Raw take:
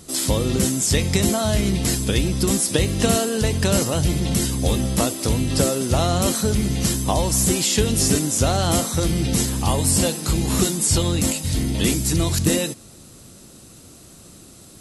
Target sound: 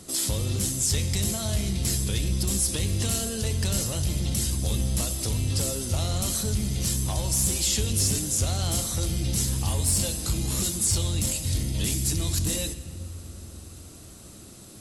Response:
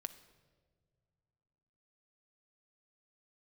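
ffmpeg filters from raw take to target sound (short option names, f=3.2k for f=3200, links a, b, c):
-filter_complex "[0:a]asoftclip=type=tanh:threshold=-14dB,acrossover=split=130|3000[a][b][c];[b]acompressor=threshold=-39dB:ratio=2[d];[a][d][c]amix=inputs=3:normalize=0[e];[1:a]atrim=start_sample=2205,asetrate=25578,aresample=44100[f];[e][f]afir=irnorm=-1:irlink=0,volume=-1.5dB"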